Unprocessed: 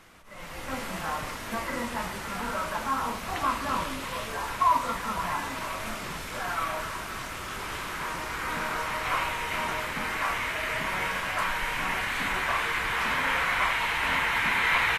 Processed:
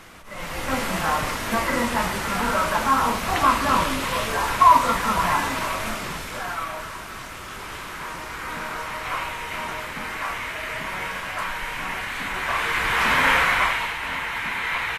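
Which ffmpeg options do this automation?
-af "volume=18dB,afade=t=out:st=5.35:d=1.31:silence=0.354813,afade=t=in:st=12.32:d=0.96:silence=0.354813,afade=t=out:st=13.28:d=0.69:silence=0.281838"

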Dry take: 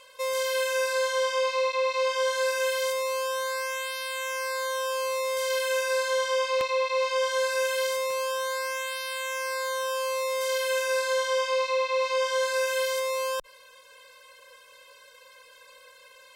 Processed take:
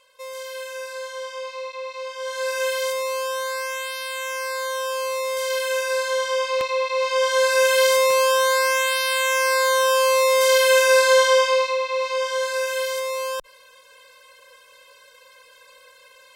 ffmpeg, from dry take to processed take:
-af "volume=11dB,afade=t=in:st=2.18:d=0.44:silence=0.334965,afade=t=in:st=6.97:d=1:silence=0.398107,afade=t=out:st=11.23:d=0.55:silence=0.354813"

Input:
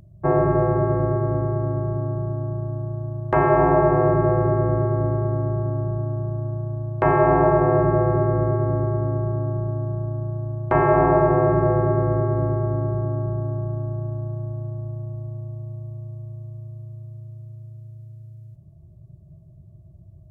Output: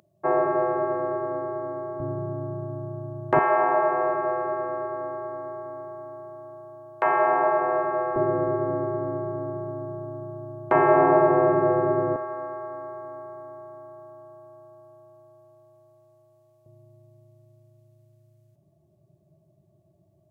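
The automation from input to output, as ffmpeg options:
-af "asetnsamples=n=441:p=0,asendcmd='2 highpass f 180;3.39 highpass f 680;8.16 highpass f 260;12.16 highpass f 790;16.66 highpass f 330',highpass=470"

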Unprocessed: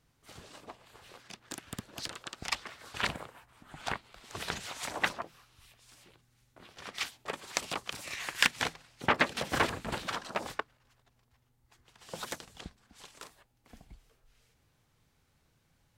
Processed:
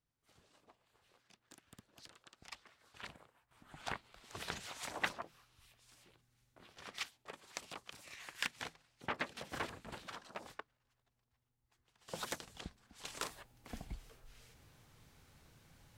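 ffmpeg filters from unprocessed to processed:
-af "asetnsamples=n=441:p=0,asendcmd='3.51 volume volume -6.5dB;7.03 volume volume -13dB;12.08 volume volume -2.5dB;13.05 volume volume 7dB',volume=-18dB"

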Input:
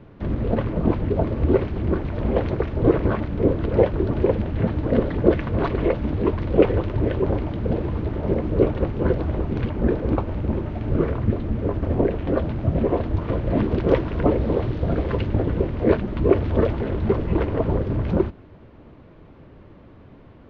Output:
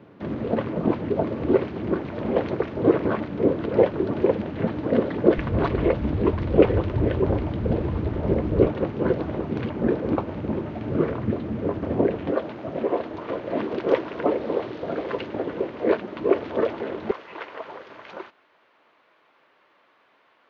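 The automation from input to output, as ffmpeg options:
-af "asetnsamples=n=441:p=0,asendcmd='5.38 highpass f 52;8.67 highpass f 150;12.31 highpass f 360;17.11 highpass f 1100',highpass=180"

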